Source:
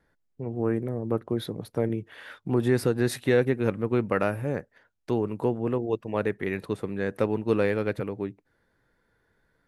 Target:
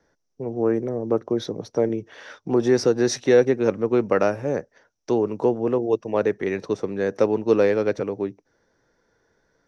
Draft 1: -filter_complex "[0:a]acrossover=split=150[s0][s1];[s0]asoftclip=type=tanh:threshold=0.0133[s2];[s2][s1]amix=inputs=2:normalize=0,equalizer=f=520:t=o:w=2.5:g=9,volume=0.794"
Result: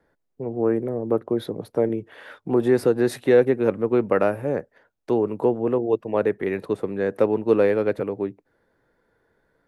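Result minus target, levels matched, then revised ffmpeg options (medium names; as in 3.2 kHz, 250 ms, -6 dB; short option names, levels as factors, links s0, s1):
8 kHz band -10.0 dB
-filter_complex "[0:a]acrossover=split=150[s0][s1];[s0]asoftclip=type=tanh:threshold=0.0133[s2];[s2][s1]amix=inputs=2:normalize=0,lowpass=f=5800:t=q:w=12,equalizer=f=520:t=o:w=2.5:g=9,volume=0.794"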